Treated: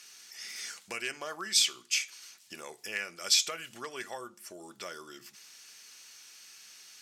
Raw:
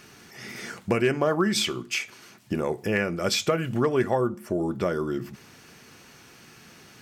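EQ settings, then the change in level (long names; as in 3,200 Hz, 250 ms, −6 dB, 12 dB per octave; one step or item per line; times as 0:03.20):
resonant band-pass 5,400 Hz, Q 0.81
high-shelf EQ 6,300 Hz +9 dB
0.0 dB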